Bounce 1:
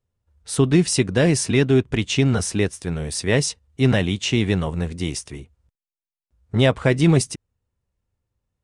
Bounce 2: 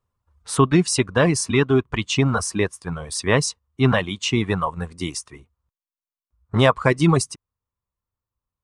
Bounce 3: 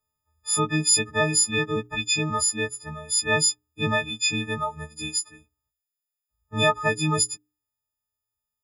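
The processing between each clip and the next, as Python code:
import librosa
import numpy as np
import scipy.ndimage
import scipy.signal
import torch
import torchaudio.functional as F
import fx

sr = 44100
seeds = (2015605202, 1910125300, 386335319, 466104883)

y1 = fx.dereverb_blind(x, sr, rt60_s=2.0)
y1 = fx.peak_eq(y1, sr, hz=1100.0, db=14.5, octaves=0.61)
y2 = fx.freq_snap(y1, sr, grid_st=6)
y2 = fx.hum_notches(y2, sr, base_hz=60, count=7)
y2 = F.gain(torch.from_numpy(y2), -8.5).numpy()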